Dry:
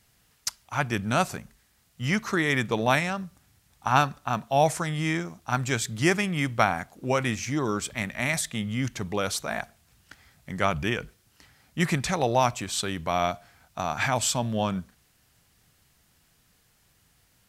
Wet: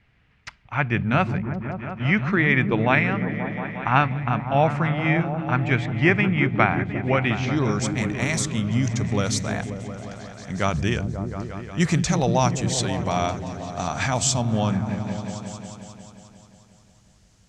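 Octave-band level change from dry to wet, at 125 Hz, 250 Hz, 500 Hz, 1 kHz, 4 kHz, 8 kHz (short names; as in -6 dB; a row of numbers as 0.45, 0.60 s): +8.0, +6.5, +2.5, +1.5, +0.5, +2.5 dB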